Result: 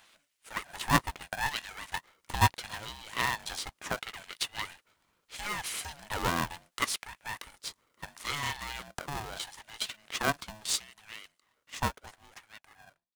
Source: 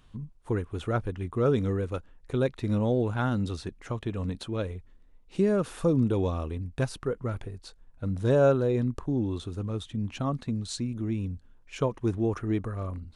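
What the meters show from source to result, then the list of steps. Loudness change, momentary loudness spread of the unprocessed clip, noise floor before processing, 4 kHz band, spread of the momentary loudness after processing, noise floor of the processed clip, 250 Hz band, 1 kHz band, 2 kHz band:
-4.5 dB, 12 LU, -56 dBFS, +9.0 dB, 19 LU, -79 dBFS, -14.0 dB, +4.5 dB, +8.0 dB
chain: ending faded out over 2.99 s; high shelf 2900 Hz +11 dB; LFO high-pass sine 0.74 Hz 670–2200 Hz; bell 530 Hz +4.5 dB 0.52 oct; polarity switched at an audio rate 430 Hz

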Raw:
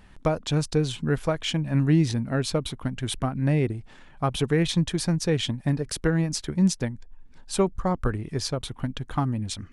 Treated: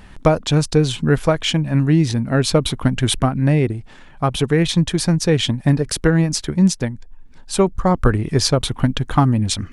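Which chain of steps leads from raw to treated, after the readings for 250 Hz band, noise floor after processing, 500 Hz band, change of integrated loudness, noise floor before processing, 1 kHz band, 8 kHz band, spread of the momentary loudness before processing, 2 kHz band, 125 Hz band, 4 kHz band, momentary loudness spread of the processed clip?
+7.5 dB, -42 dBFS, +8.0 dB, +8.0 dB, -49 dBFS, +9.0 dB, +8.5 dB, 8 LU, +8.0 dB, +8.0 dB, +9.0 dB, 4 LU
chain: vocal rider within 4 dB 0.5 s; gain +8.5 dB

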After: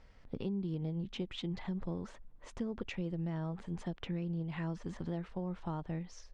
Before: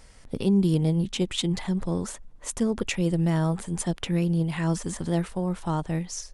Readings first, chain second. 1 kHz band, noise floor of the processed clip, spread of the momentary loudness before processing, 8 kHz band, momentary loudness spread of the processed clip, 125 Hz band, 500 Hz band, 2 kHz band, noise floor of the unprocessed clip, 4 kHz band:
-12.5 dB, -57 dBFS, 8 LU, under -25 dB, 5 LU, -13.0 dB, -13.0 dB, -12.5 dB, -48 dBFS, -14.5 dB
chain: compressor, threshold -26 dBFS, peak gain reduction 8.5 dB; air absorption 210 m; gain -7.5 dB

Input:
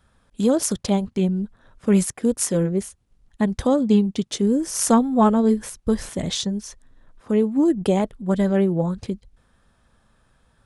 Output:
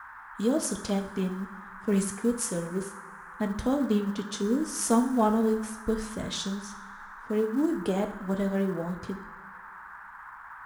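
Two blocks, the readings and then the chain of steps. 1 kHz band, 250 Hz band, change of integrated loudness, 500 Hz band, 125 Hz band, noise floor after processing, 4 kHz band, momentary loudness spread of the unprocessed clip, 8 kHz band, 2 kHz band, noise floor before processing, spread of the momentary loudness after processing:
-6.0 dB, -8.0 dB, -7.5 dB, -7.0 dB, -9.0 dB, -46 dBFS, -7.0 dB, 10 LU, -7.0 dB, 0.0 dB, -63 dBFS, 19 LU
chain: two-slope reverb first 0.5 s, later 2.1 s, from -18 dB, DRR 4.5 dB; band noise 860–1700 Hz -37 dBFS; short-mantissa float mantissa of 4-bit; gain -8.5 dB

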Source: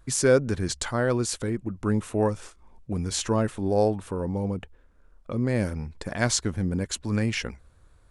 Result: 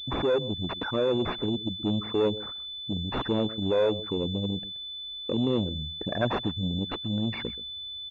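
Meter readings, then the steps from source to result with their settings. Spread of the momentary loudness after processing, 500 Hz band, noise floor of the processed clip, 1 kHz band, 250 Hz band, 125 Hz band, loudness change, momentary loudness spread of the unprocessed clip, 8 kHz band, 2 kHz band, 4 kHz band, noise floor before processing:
9 LU, -1.5 dB, -39 dBFS, -2.0 dB, -1.5 dB, -4.5 dB, -2.5 dB, 9 LU, under -30 dB, -6.0 dB, +6.0 dB, -57 dBFS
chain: formant sharpening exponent 3; echo 0.128 s -19 dB; in parallel at +2 dB: compressor, threshold -37 dBFS, peak gain reduction 20 dB; on the sum: tube stage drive 19 dB, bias 0.35; vocal rider 2 s; HPF 220 Hz 6 dB/oct; pulse-width modulation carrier 3500 Hz; gain +2 dB

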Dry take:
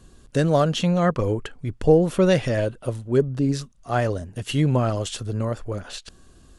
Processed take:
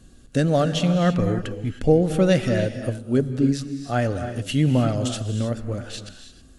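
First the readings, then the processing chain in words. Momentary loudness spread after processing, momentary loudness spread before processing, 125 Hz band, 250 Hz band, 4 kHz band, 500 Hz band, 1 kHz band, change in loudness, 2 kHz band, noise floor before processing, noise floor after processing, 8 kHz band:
11 LU, 12 LU, +1.0 dB, +2.0 dB, +0.5 dB, -1.5 dB, -2.0 dB, +0.5 dB, 0.0 dB, -53 dBFS, -49 dBFS, +0.5 dB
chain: thirty-one-band EQ 250 Hz +6 dB, 400 Hz -5 dB, 1000 Hz -11 dB; non-linear reverb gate 0.34 s rising, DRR 8.5 dB

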